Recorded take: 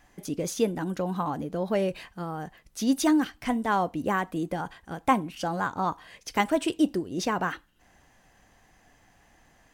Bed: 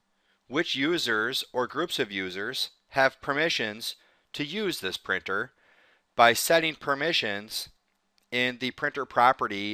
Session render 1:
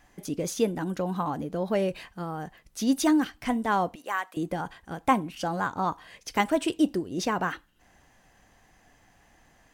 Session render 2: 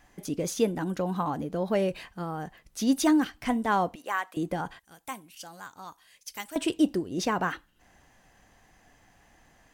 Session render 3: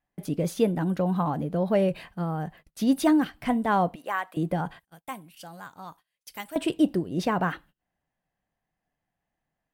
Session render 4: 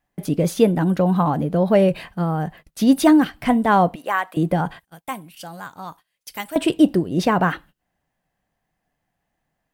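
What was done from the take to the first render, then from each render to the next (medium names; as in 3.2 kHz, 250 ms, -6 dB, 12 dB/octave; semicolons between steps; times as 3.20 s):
3.95–4.37 s: high-pass 890 Hz
4.79–6.56 s: pre-emphasis filter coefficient 0.9
gate -52 dBFS, range -25 dB; fifteen-band graphic EQ 160 Hz +8 dB, 630 Hz +4 dB, 6.3 kHz -9 dB
trim +7.5 dB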